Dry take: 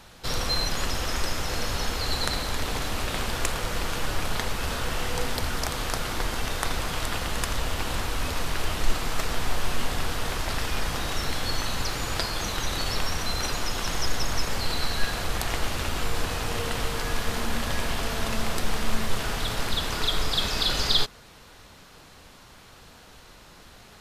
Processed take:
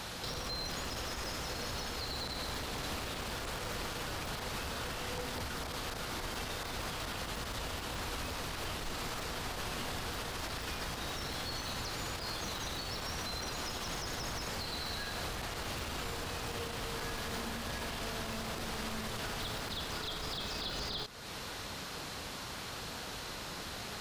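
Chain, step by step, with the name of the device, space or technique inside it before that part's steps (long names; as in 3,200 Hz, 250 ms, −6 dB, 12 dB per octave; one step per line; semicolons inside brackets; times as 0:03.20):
broadcast voice chain (high-pass filter 72 Hz 6 dB per octave; de-essing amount 75%; downward compressor 3 to 1, threshold −44 dBFS, peak gain reduction 14 dB; parametric band 4,500 Hz +2.5 dB; brickwall limiter −37 dBFS, peak gain reduction 11 dB)
level +7.5 dB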